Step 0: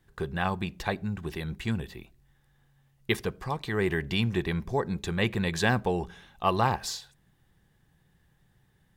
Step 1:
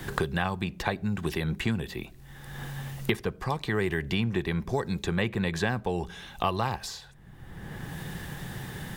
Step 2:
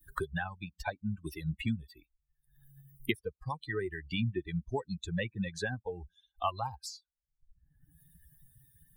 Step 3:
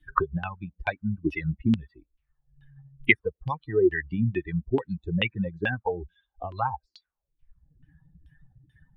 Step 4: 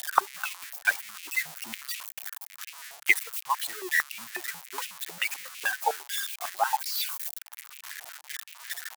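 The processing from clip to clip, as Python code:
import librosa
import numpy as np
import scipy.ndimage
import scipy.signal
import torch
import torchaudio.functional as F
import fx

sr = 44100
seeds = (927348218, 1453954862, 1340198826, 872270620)

y1 = fx.band_squash(x, sr, depth_pct=100)
y2 = fx.bin_expand(y1, sr, power=3.0)
y3 = fx.filter_lfo_lowpass(y2, sr, shape='saw_down', hz=2.3, low_hz=270.0, high_hz=3100.0, q=4.2)
y3 = y3 * 10.0 ** (6.0 / 20.0)
y4 = y3 + 0.5 * 10.0 ** (-19.0 / 20.0) * np.diff(np.sign(y3), prepend=np.sign(y3[:1]))
y4 = fx.tremolo_shape(y4, sr, shape='triangle', hz=3.6, depth_pct=40)
y4 = fx.filter_held_highpass(y4, sr, hz=11.0, low_hz=720.0, high_hz=2500.0)
y4 = y4 * 10.0 ** (-2.5 / 20.0)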